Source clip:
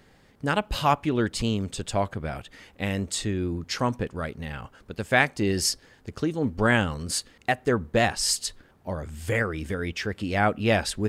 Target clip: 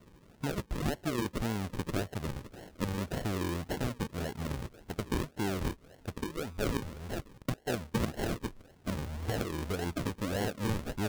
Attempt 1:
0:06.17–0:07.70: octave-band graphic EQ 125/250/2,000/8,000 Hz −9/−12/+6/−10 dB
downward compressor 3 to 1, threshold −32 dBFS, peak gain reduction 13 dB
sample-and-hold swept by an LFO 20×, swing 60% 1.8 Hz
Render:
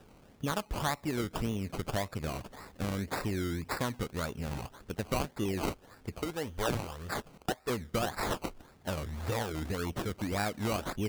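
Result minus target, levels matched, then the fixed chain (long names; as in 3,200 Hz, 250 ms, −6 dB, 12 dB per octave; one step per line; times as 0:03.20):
sample-and-hold swept by an LFO: distortion −7 dB
0:06.17–0:07.70: octave-band graphic EQ 125/250/2,000/8,000 Hz −9/−12/+6/−10 dB
downward compressor 3 to 1, threshold −32 dBFS, peak gain reduction 13 dB
sample-and-hold swept by an LFO 51×, swing 60% 1.8 Hz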